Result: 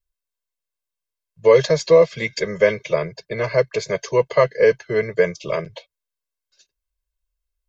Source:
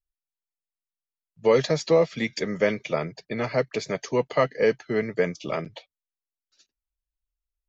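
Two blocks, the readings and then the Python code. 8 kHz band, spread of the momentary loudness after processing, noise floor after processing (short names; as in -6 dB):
n/a, 12 LU, -85 dBFS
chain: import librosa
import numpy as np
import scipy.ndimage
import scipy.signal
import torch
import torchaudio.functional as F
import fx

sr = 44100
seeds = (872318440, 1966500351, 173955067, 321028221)

y = x + 0.95 * np.pad(x, (int(1.9 * sr / 1000.0), 0))[:len(x)]
y = y * librosa.db_to_amplitude(2.0)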